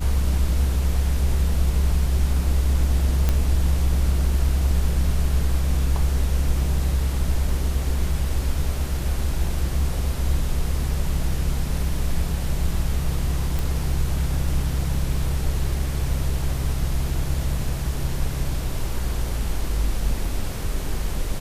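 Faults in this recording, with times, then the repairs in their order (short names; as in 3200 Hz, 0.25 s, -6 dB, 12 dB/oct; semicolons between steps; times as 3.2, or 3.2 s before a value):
3.29 pop -8 dBFS
13.59 pop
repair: de-click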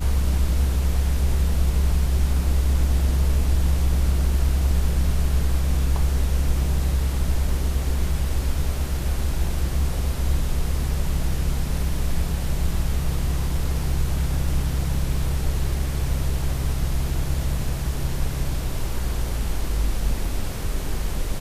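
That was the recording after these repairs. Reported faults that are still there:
none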